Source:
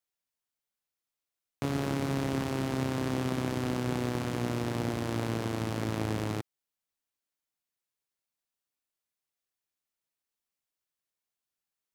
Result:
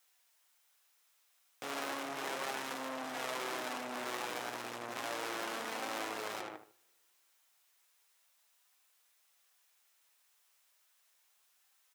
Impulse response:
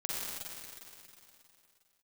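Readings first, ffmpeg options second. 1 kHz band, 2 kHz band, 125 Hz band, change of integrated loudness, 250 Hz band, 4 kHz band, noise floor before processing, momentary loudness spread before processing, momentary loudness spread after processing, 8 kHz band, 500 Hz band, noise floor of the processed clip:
−1.0 dB, 0.0 dB, −29.5 dB, −7.5 dB, −15.5 dB, −0.5 dB, below −85 dBFS, 3 LU, 4 LU, −0.5 dB, −7.5 dB, −72 dBFS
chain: -filter_complex "[0:a]asplit=2[link_01][link_02];[link_02]aeval=exprs='0.0266*(abs(mod(val(0)/0.0266+3,4)-2)-1)':channel_layout=same,volume=-6dB[link_03];[link_01][link_03]amix=inputs=2:normalize=0,asplit=2[link_04][link_05];[link_05]adelay=76,lowpass=frequency=1900:poles=1,volume=-5.5dB,asplit=2[link_06][link_07];[link_07]adelay=76,lowpass=frequency=1900:poles=1,volume=0.32,asplit=2[link_08][link_09];[link_09]adelay=76,lowpass=frequency=1900:poles=1,volume=0.32,asplit=2[link_10][link_11];[link_11]adelay=76,lowpass=frequency=1900:poles=1,volume=0.32[link_12];[link_04][link_06][link_08][link_10][link_12]amix=inputs=5:normalize=0,flanger=delay=3.8:depth=5.8:regen=67:speed=0.34:shape=sinusoidal,asoftclip=type=tanh:threshold=-34dB,acontrast=32,alimiter=level_in=15dB:limit=-24dB:level=0:latency=1:release=30,volume=-15dB,highpass=770,bandreject=frequency=4500:width=25,asplit=2[link_13][link_14];[1:a]atrim=start_sample=2205,asetrate=70560,aresample=44100[link_15];[link_14][link_15]afir=irnorm=-1:irlink=0,volume=-27.5dB[link_16];[link_13][link_16]amix=inputs=2:normalize=0,volume=13dB"

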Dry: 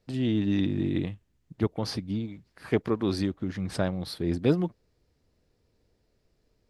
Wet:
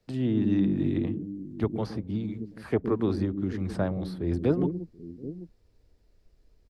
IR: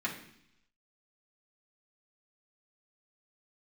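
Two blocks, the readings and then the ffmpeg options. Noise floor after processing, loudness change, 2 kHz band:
−64 dBFS, 0.0 dB, −4.0 dB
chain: -filter_complex "[0:a]asubboost=boost=5:cutoff=65,acrossover=split=120|390|1700[link_01][link_02][link_03][link_04];[link_02]aecho=1:1:117|177|731|785:0.668|0.668|0.119|0.355[link_05];[link_04]acompressor=threshold=-51dB:ratio=6[link_06];[link_01][link_05][link_03][link_06]amix=inputs=4:normalize=0"

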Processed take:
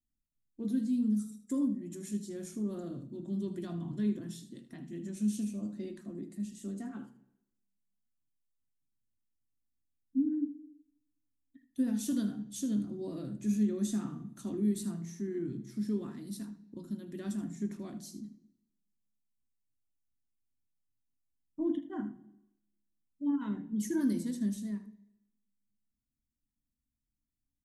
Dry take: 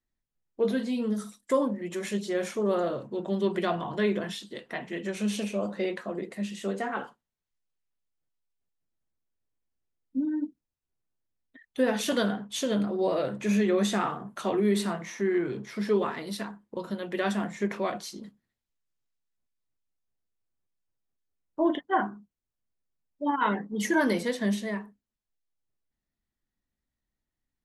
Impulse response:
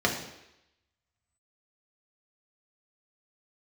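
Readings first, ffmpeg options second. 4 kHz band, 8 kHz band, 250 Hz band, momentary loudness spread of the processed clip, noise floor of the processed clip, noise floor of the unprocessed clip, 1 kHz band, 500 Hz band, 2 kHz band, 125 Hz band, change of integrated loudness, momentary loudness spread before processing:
−16.0 dB, −5.5 dB, −3.0 dB, 13 LU, below −85 dBFS, below −85 dBFS, −22.5 dB, −15.0 dB, below −20 dB, −3.5 dB, −6.0 dB, 11 LU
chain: -filter_complex "[0:a]firequalizer=gain_entry='entry(280,0);entry(460,-24);entry(3100,-18);entry(7300,-3)':delay=0.05:min_phase=1,aecho=1:1:77:0.211,asplit=2[link_01][link_02];[1:a]atrim=start_sample=2205[link_03];[link_02][link_03]afir=irnorm=-1:irlink=0,volume=-22dB[link_04];[link_01][link_04]amix=inputs=2:normalize=0,volume=-1.5dB"

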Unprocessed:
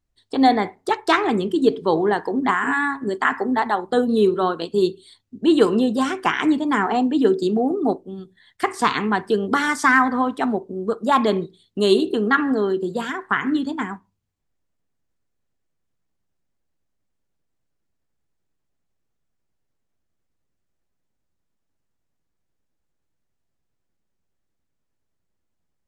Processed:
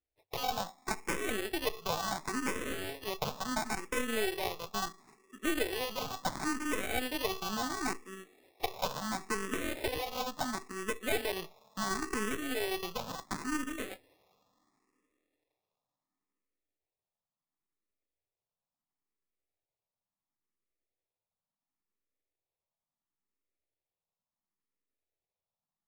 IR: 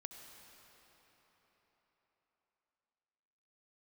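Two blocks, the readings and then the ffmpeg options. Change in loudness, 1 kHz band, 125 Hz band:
−15.5 dB, −16.0 dB, −13.0 dB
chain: -filter_complex "[0:a]acompressor=threshold=-18dB:ratio=6,asplit=2[link_01][link_02];[1:a]atrim=start_sample=2205,lowshelf=frequency=410:gain=-5[link_03];[link_02][link_03]afir=irnorm=-1:irlink=0,volume=-14dB[link_04];[link_01][link_04]amix=inputs=2:normalize=0,acrusher=samples=29:mix=1:aa=0.000001,lowshelf=frequency=320:gain=-11.5,aeval=exprs='0.376*(cos(1*acos(clip(val(0)/0.376,-1,1)))-cos(1*PI/2))+0.119*(cos(4*acos(clip(val(0)/0.376,-1,1)))-cos(4*PI/2))+0.0376*(cos(6*acos(clip(val(0)/0.376,-1,1)))-cos(6*PI/2))+0.0299*(cos(8*acos(clip(val(0)/0.376,-1,1)))-cos(8*PI/2))':channel_layout=same,asplit=2[link_05][link_06];[link_06]afreqshift=0.72[link_07];[link_05][link_07]amix=inputs=2:normalize=1,volume=-7dB"

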